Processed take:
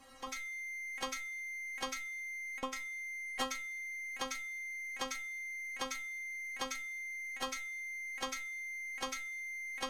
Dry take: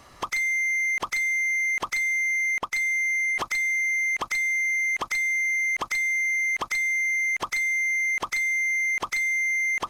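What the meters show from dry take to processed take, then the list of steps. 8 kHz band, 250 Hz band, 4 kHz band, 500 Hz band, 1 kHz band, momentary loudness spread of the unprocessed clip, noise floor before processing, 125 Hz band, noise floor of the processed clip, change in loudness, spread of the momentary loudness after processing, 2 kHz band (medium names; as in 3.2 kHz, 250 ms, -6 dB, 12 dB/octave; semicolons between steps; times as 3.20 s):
-12.0 dB, -2.5 dB, -4.0 dB, -4.0 dB, -9.5 dB, 2 LU, -52 dBFS, no reading, -46 dBFS, -16.5 dB, 2 LU, -18.0 dB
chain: de-hum 429.5 Hz, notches 3; transient shaper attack -6 dB, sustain +7 dB; inharmonic resonator 260 Hz, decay 0.29 s, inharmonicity 0.002; trim +8 dB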